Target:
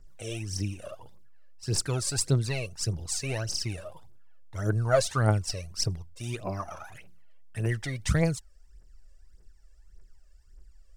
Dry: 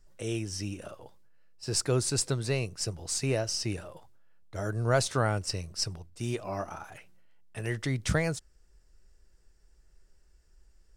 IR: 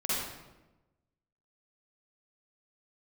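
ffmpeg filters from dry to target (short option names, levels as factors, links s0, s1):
-af "aphaser=in_gain=1:out_gain=1:delay=1.9:decay=0.72:speed=1.7:type=triangular,volume=0.75"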